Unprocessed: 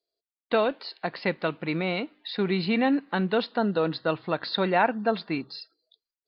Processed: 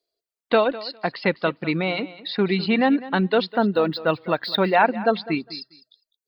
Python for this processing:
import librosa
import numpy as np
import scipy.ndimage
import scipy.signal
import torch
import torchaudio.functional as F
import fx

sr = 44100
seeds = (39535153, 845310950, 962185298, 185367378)

y = fx.dereverb_blind(x, sr, rt60_s=0.98)
y = fx.echo_feedback(y, sr, ms=203, feedback_pct=16, wet_db=-17.0)
y = fx.resample_linear(y, sr, factor=2, at=(3.49, 4.75))
y = y * 10.0 ** (5.5 / 20.0)